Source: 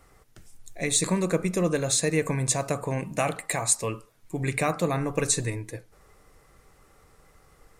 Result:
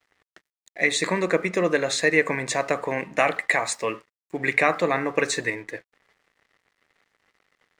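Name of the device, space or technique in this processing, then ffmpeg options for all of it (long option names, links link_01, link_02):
pocket radio on a weak battery: -af "highpass=300,lowpass=4300,aeval=exprs='sgn(val(0))*max(abs(val(0))-0.00133,0)':channel_layout=same,equalizer=frequency=1900:width_type=o:width=0.46:gain=9.5,volume=5dB"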